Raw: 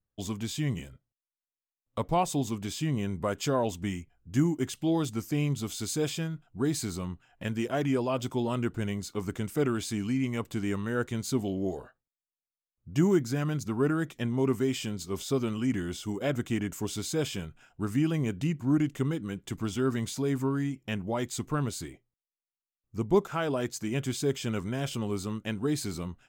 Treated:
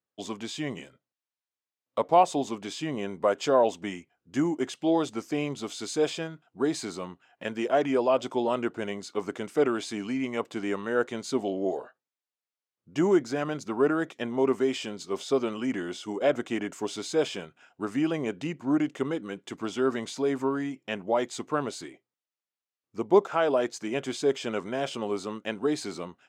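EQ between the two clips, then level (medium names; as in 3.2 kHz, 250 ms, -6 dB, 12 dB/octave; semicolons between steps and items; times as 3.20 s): dynamic bell 630 Hz, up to +6 dB, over -43 dBFS, Q 1.1; high-pass 310 Hz 12 dB/octave; distance through air 68 m; +3.0 dB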